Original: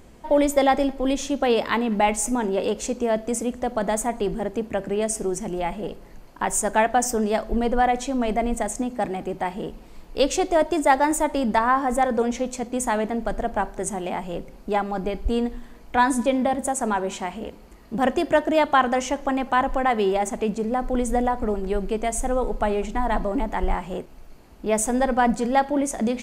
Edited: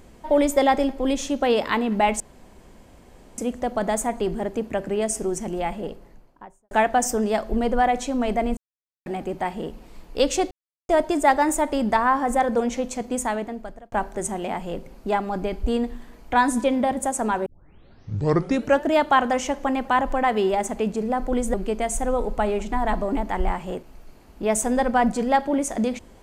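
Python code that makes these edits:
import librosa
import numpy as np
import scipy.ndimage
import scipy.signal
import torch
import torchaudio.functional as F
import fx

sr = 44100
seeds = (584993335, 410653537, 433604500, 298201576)

y = fx.studio_fade_out(x, sr, start_s=5.69, length_s=1.02)
y = fx.edit(y, sr, fx.room_tone_fill(start_s=2.2, length_s=1.18),
    fx.silence(start_s=8.57, length_s=0.49),
    fx.insert_silence(at_s=10.51, length_s=0.38),
    fx.fade_out_span(start_s=12.74, length_s=0.8),
    fx.tape_start(start_s=17.08, length_s=1.4),
    fx.cut(start_s=21.16, length_s=0.61), tone=tone)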